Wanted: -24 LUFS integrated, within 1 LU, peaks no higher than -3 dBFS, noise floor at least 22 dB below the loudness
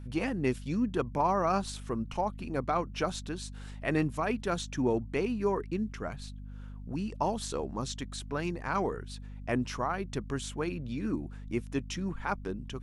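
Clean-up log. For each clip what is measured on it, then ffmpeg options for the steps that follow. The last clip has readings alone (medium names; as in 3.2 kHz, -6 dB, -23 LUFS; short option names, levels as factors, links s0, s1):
hum 50 Hz; highest harmonic 250 Hz; hum level -40 dBFS; loudness -33.0 LUFS; peak level -14.5 dBFS; loudness target -24.0 LUFS
-> -af "bandreject=f=50:t=h:w=6,bandreject=f=100:t=h:w=6,bandreject=f=150:t=h:w=6,bandreject=f=200:t=h:w=6,bandreject=f=250:t=h:w=6"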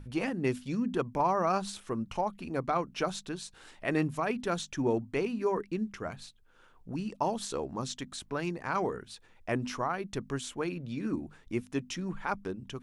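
hum not found; loudness -33.5 LUFS; peak level -15.5 dBFS; loudness target -24.0 LUFS
-> -af "volume=2.99"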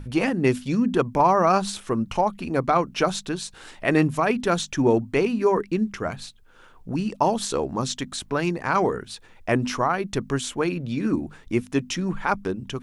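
loudness -24.0 LUFS; peak level -6.0 dBFS; noise floor -50 dBFS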